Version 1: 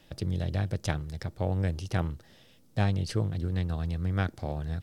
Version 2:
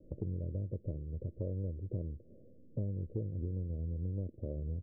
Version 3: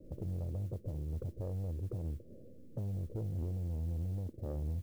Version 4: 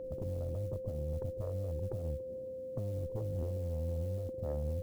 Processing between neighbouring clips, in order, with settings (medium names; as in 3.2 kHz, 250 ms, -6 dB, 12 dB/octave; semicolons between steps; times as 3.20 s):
steep low-pass 570 Hz 72 dB/octave; peaking EQ 150 Hz -5.5 dB 0.83 oct; compression 3:1, threshold -42 dBFS, peak gain reduction 13.5 dB; trim +4.5 dB
peak limiter -31.5 dBFS, peak gain reduction 6.5 dB; modulation noise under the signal 32 dB; saturation -35.5 dBFS, distortion -16 dB; trim +4.5 dB
Chebyshev shaper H 2 -9 dB, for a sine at -31.5 dBFS; whistle 520 Hz -40 dBFS; tape noise reduction on one side only encoder only